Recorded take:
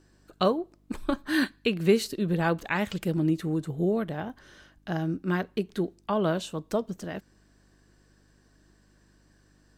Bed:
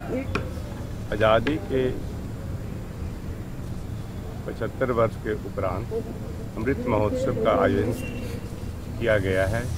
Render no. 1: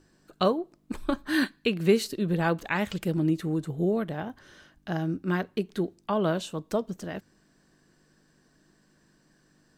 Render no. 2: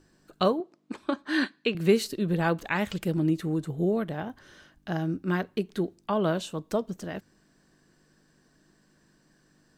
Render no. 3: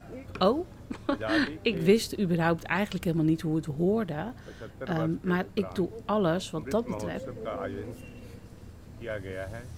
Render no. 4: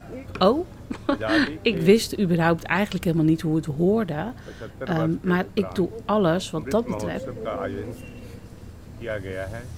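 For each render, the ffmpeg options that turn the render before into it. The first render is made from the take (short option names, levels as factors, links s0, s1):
-af "bandreject=f=50:t=h:w=4,bandreject=f=100:t=h:w=4"
-filter_complex "[0:a]asettb=1/sr,asplit=3[s0][s1][s2];[s0]atrim=end=0.604[s3];[s1]atrim=start=0.6:end=1.75,asetpts=PTS-STARTPTS,afade=t=in:d=0.004:c=qsin,afade=t=out:st=1.146:d=0.004:c=qsin,highpass=230,lowpass=6200[s4];[s2]atrim=start=1.746[s5];[s3][s4]acrossfade=d=0.004:c1=hsin:c2=qsin[s6];[s6][s5]acrossfade=d=0.004:c1=qsin:c2=hsin"
-filter_complex "[1:a]volume=0.2[s0];[0:a][s0]amix=inputs=2:normalize=0"
-af "volume=1.88"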